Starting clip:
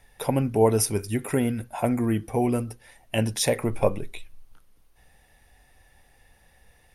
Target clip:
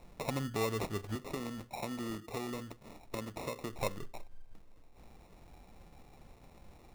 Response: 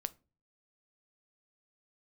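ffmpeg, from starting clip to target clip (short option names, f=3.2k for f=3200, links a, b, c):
-filter_complex "[0:a]asettb=1/sr,asplit=3[a][b][c];[a]atrim=end=1.154[d];[b]atrim=start=1.15:end=3.79,asetpts=PTS-STARTPTS,afade=t=in:d=0.004:c=qsin,afade=t=out:st=2.636:d=0.004:c=qsin,acrossover=split=240|590|2100[e][f][g][h];[e]acompressor=threshold=-41dB:ratio=4[i];[f]acompressor=threshold=-31dB:ratio=4[j];[g]acompressor=threshold=-42dB:ratio=4[k];[h]acompressor=threshold=-38dB:ratio=4[l];[i][j][k][l]amix=inputs=4:normalize=0[m];[c]atrim=start=3.786[n];[d][m]acrossfade=d=0.004:c1=hsin:c2=qsin[o];[o][n]acrossfade=d=0.004:c1=qsin:c2=hsin,acrusher=samples=28:mix=1:aa=0.000001,acompressor=threshold=-46dB:ratio=2,volume=1.5dB"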